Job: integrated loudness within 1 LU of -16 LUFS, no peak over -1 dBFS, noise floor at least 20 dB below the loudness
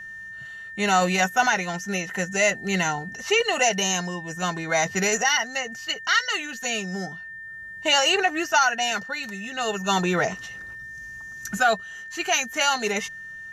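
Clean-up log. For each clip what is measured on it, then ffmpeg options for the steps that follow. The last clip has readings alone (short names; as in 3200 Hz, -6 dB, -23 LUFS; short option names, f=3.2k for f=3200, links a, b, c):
steady tone 1800 Hz; tone level -36 dBFS; loudness -23.0 LUFS; peak -7.0 dBFS; loudness target -16.0 LUFS
-> -af "bandreject=f=1.8k:w=30"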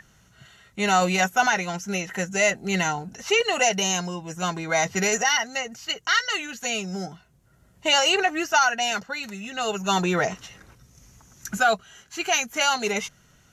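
steady tone none; loudness -23.5 LUFS; peak -7.0 dBFS; loudness target -16.0 LUFS
-> -af "volume=7.5dB,alimiter=limit=-1dB:level=0:latency=1"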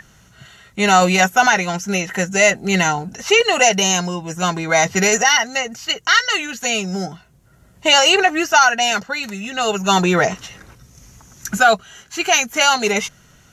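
loudness -16.0 LUFS; peak -1.0 dBFS; noise floor -51 dBFS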